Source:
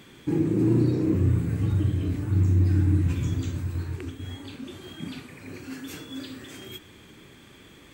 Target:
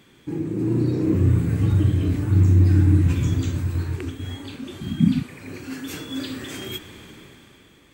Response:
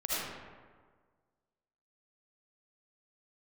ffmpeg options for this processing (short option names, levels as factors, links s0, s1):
-filter_complex "[0:a]asettb=1/sr,asplit=3[s0][s1][s2];[s0]atrim=end=4.814[s3];[s1]atrim=start=4.81:end=5.23,asetpts=PTS-STARTPTS,afade=t=in:d=0.004:c=qsin,afade=t=out:st=0.416:d=0.004:c=qsin,lowshelf=f=300:t=q:w=3:g=11.5[s4];[s2]atrim=start=5.226[s5];[s3][s4]acrossfade=d=0.004:c1=hsin:c2=qsin[s6];[s6][s5]acrossfade=d=0.004:c1=qsin:c2=hsin,dynaudnorm=f=170:g=11:m=4.47,volume=0.631"